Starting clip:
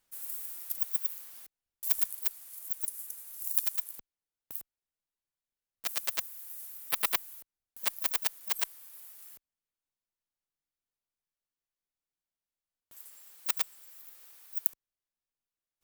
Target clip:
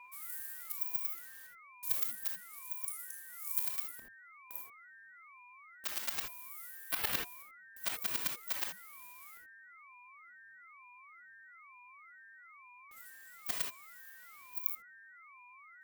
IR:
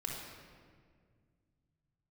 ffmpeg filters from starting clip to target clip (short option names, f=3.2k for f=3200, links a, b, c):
-filter_complex "[0:a]aeval=exprs='val(0)+0.00398*sin(2*PI*1700*n/s)':c=same[a];[1:a]atrim=start_sample=2205,atrim=end_sample=3969[b];[a][b]afir=irnorm=-1:irlink=0,aeval=exprs='val(0)*sin(2*PI*410*n/s+410*0.75/1.1*sin(2*PI*1.1*n/s))':c=same"